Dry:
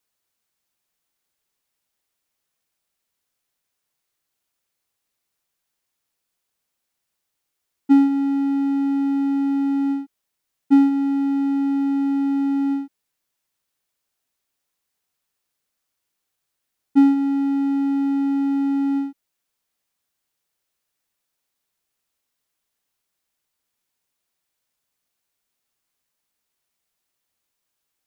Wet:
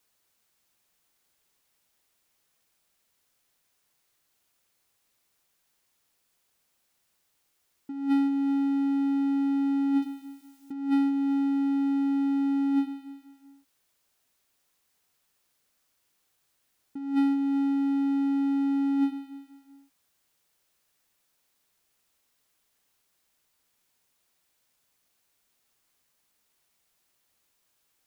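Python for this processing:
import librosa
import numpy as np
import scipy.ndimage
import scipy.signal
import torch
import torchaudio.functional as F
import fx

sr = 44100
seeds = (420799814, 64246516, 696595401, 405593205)

y = fx.high_shelf(x, sr, hz=2500.0, db=9.5, at=(10.02, 10.72))
y = fx.echo_feedback(y, sr, ms=193, feedback_pct=45, wet_db=-15.5)
y = fx.over_compress(y, sr, threshold_db=-26.0, ratio=-1.0)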